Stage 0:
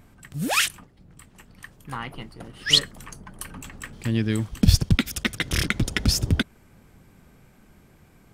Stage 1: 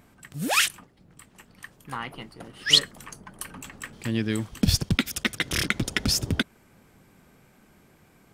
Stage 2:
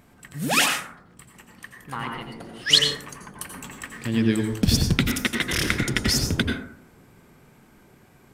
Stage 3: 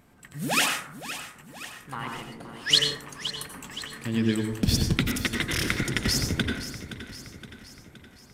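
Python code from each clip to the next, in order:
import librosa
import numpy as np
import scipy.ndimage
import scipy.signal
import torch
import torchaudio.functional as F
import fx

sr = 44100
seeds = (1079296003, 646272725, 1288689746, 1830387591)

y1 = fx.low_shelf(x, sr, hz=110.0, db=-11.5)
y2 = fx.rev_plate(y1, sr, seeds[0], rt60_s=0.65, hf_ratio=0.4, predelay_ms=75, drr_db=2.0)
y2 = F.gain(torch.from_numpy(y2), 1.0).numpy()
y3 = fx.echo_feedback(y2, sr, ms=519, feedback_pct=53, wet_db=-12.5)
y3 = F.gain(torch.from_numpy(y3), -3.5).numpy()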